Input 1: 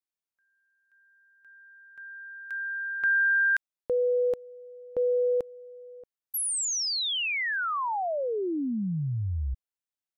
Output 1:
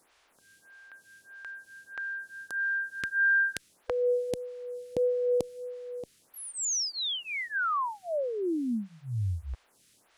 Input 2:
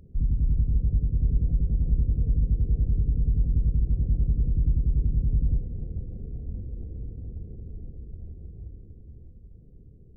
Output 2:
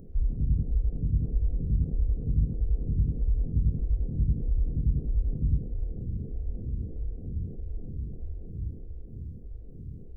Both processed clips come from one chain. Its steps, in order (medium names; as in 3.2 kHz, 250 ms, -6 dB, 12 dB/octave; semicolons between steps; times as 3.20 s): spectral levelling over time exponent 0.6; lamp-driven phase shifter 1.6 Hz